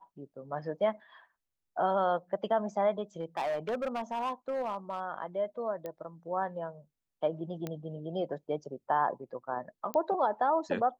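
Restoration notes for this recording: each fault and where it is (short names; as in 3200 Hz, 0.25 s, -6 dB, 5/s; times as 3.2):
3.2–5 clipped -28.5 dBFS
5.86 pop -26 dBFS
7.67 pop -22 dBFS
9.94 pop -18 dBFS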